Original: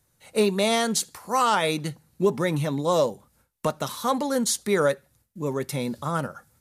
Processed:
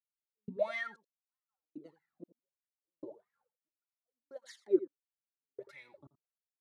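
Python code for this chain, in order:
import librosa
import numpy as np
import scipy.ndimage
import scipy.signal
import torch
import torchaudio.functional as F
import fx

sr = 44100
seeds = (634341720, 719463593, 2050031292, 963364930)

p1 = fx.peak_eq(x, sr, hz=4200.0, db=4.5, octaves=0.73)
p2 = fx.level_steps(p1, sr, step_db=11)
p3 = p1 + (p2 * 10.0 ** (3.0 / 20.0))
p4 = fx.wah_lfo(p3, sr, hz=1.6, low_hz=230.0, high_hz=2000.0, q=13.0)
p5 = fx.step_gate(p4, sr, bpm=94, pattern='...xxx..', floor_db=-60.0, edge_ms=4.5)
p6 = p5 + fx.echo_single(p5, sr, ms=84, db=-16.0, dry=0)
p7 = fx.flanger_cancel(p6, sr, hz=0.34, depth_ms=4.5)
y = p7 * 10.0 ** (-4.0 / 20.0)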